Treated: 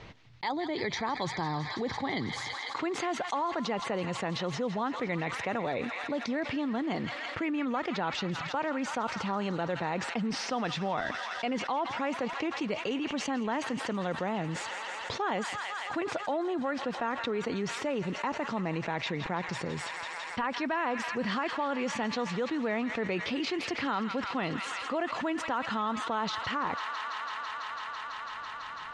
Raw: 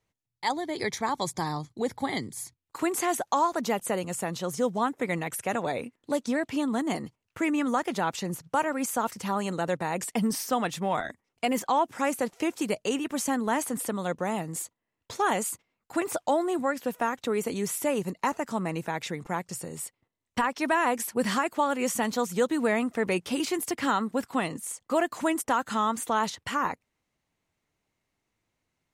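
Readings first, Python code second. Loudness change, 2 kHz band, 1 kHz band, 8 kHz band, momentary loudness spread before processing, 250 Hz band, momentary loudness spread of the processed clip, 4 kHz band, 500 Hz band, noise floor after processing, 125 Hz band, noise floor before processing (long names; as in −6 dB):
−4.0 dB, −1.0 dB, −4.0 dB, −11.5 dB, 7 LU, −3.5 dB, 4 LU, +1.0 dB, −4.5 dB, −40 dBFS, −0.5 dB, −82 dBFS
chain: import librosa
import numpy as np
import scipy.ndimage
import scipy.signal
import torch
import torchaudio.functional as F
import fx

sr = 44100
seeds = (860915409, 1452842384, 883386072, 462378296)

p1 = scipy.signal.sosfilt(scipy.signal.butter(4, 4500.0, 'lowpass', fs=sr, output='sos'), x)
p2 = p1 + fx.echo_wet_highpass(p1, sr, ms=166, feedback_pct=83, hz=1500.0, wet_db=-12, dry=0)
p3 = fx.env_flatten(p2, sr, amount_pct=70)
y = p3 * librosa.db_to_amplitude(-8.5)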